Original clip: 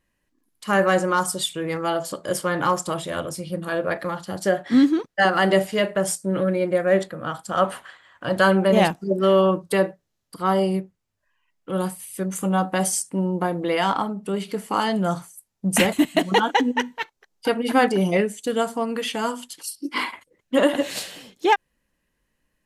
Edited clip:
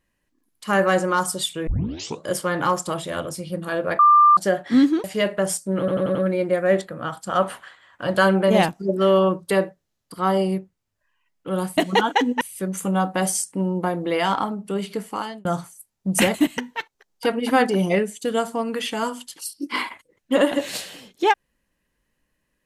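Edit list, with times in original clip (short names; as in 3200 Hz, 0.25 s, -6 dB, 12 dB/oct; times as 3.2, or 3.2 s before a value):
1.67 tape start 0.58 s
3.99–4.37 bleep 1190 Hz -9.5 dBFS
5.04–5.62 cut
6.37 stutter 0.09 s, 5 plays
14.54–15.03 fade out
16.16–16.8 move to 11.99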